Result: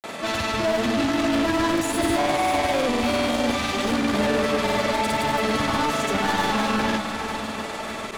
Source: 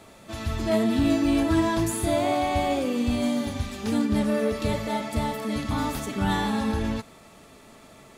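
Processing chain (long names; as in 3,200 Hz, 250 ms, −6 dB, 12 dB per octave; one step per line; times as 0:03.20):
mid-hump overdrive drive 33 dB, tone 3,600 Hz, clips at −10.5 dBFS
feedback delay with all-pass diffusion 505 ms, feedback 58%, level −8 dB
granular cloud, pitch spread up and down by 0 semitones
level −4.5 dB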